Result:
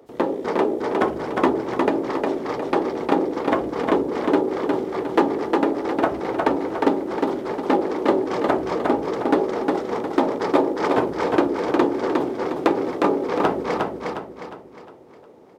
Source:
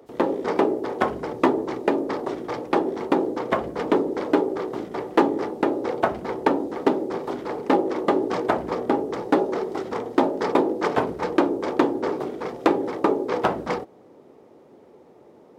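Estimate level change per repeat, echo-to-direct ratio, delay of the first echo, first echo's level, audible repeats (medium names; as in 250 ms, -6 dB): -7.5 dB, -2.0 dB, 358 ms, -3.0 dB, 5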